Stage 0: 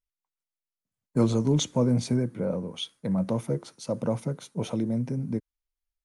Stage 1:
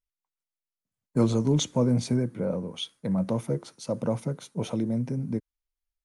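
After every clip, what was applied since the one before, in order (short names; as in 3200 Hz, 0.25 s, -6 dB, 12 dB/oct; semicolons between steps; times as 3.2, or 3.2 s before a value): nothing audible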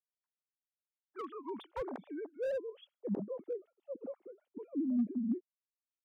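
sine-wave speech; band-pass sweep 1600 Hz -> 230 Hz, 0.83–3.97; slew limiter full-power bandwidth 20 Hz; gain -4 dB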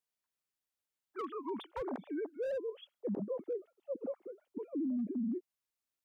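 limiter -34.5 dBFS, peak gain reduction 10 dB; gain +4 dB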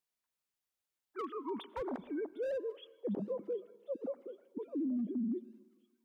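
thin delay 0.754 s, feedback 63%, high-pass 2800 Hz, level -17 dB; reverb RT60 1.3 s, pre-delay 83 ms, DRR 19.5 dB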